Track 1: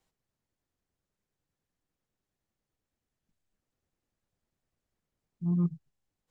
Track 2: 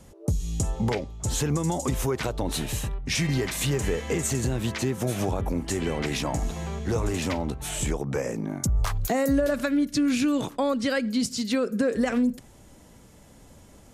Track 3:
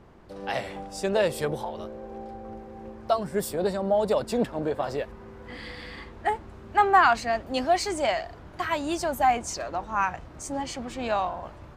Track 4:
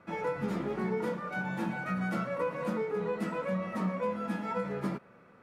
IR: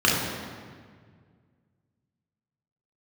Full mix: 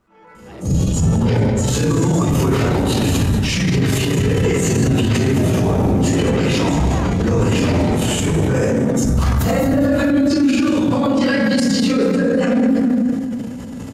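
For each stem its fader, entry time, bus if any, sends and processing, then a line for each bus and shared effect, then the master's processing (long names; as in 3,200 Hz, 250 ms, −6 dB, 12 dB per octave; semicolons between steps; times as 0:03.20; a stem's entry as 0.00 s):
+2.5 dB, 0.00 s, no send, no echo send, no processing
−2.5 dB, 0.35 s, send −5 dB, echo send −4.5 dB, random phases in long frames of 50 ms
−14.0 dB, 0.00 s, no send, no echo send, no processing
−17.5 dB, 0.00 s, send −8 dB, no echo send, parametric band 81 Hz −13.5 dB 2.8 octaves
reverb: on, RT60 1.8 s, pre-delay 3 ms
echo: repeating echo 219 ms, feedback 58%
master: automatic gain control gain up to 3.5 dB; transient designer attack −8 dB, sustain +7 dB; brickwall limiter −8 dBFS, peak gain reduction 6.5 dB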